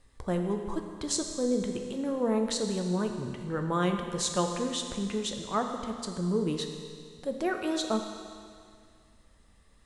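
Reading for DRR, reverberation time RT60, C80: 4.0 dB, 2.2 s, 6.5 dB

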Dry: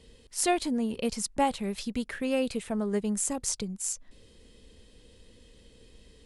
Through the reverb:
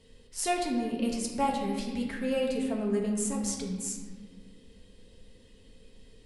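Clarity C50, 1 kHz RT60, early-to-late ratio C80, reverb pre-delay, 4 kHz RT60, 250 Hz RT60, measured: 3.5 dB, 1.4 s, 5.0 dB, 4 ms, 1.0 s, 2.6 s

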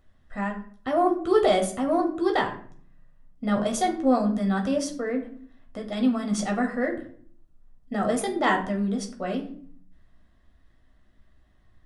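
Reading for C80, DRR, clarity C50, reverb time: 14.0 dB, 1.5 dB, 10.5 dB, 0.55 s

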